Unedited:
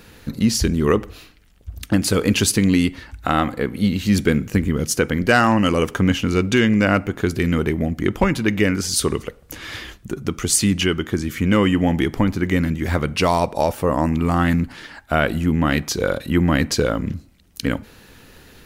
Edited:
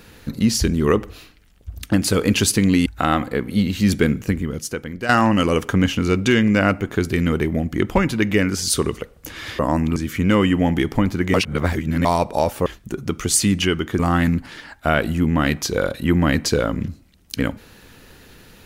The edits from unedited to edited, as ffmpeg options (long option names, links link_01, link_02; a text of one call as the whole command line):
ffmpeg -i in.wav -filter_complex "[0:a]asplit=9[link_01][link_02][link_03][link_04][link_05][link_06][link_07][link_08][link_09];[link_01]atrim=end=2.862[link_10];[link_02]atrim=start=3.118:end=5.35,asetpts=PTS-STARTPTS,afade=type=out:start_time=1.292:duration=0.94:curve=qua:silence=0.281838[link_11];[link_03]atrim=start=5.35:end=9.852,asetpts=PTS-STARTPTS,afade=type=in:duration=0.004:curve=hsin:silence=0.281838[link_12];[link_04]atrim=start=13.878:end=14.252[link_13];[link_05]atrim=start=11.178:end=12.562[link_14];[link_06]atrim=start=12.558:end=13.272,asetpts=PTS-STARTPTS,areverse[link_15];[link_07]atrim=start=13.268:end=13.882[link_16];[link_08]atrim=start=9.848:end=11.182[link_17];[link_09]atrim=start=14.248[link_18];[link_11][link_12]concat=n=2:v=0:a=1[link_19];[link_10][link_19]acrossfade=duration=0.004:curve1=hsin:curve2=hsin[link_20];[link_20][link_13]acrossfade=duration=0.004:curve1=hsin:curve2=hsin[link_21];[link_21][link_14]acrossfade=duration=0.004:curve1=hsin:curve2=hsin[link_22];[link_22][link_15]acrossfade=duration=0.004:curve1=hsin:curve2=hsin[link_23];[link_23][link_16]acrossfade=duration=0.004:curve1=hsin:curve2=hsin[link_24];[link_24][link_17]acrossfade=duration=0.004:curve1=hsin:curve2=hsin[link_25];[link_25][link_18]acrossfade=duration=0.004:curve1=hsin:curve2=hsin" out.wav